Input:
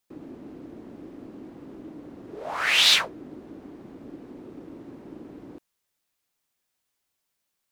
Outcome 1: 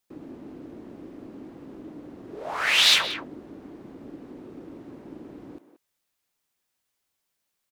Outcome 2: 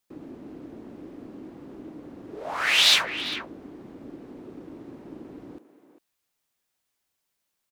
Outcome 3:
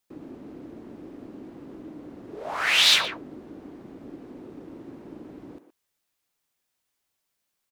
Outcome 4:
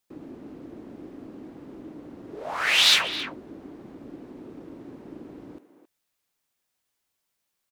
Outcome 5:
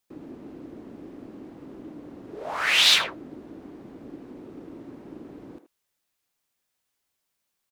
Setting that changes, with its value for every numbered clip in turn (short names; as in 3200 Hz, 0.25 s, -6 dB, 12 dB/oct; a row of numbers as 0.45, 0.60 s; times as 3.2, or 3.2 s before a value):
speakerphone echo, time: 180, 400, 120, 270, 80 ms